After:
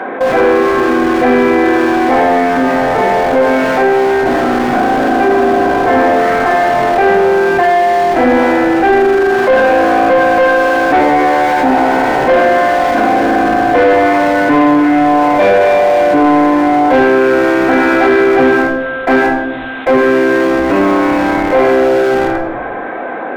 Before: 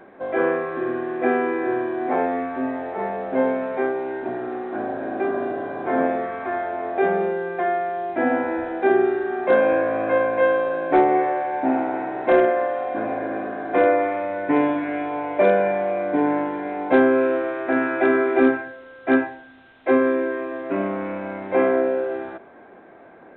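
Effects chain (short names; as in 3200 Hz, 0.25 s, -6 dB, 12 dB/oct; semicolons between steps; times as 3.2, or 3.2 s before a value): HPF 140 Hz 12 dB/oct; in parallel at -10 dB: Schmitt trigger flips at -27.5 dBFS; on the sum: shoebox room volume 1000 m³, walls furnished, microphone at 2 m; overdrive pedal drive 19 dB, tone 1900 Hz, clips at -1.5 dBFS; fast leveller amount 50%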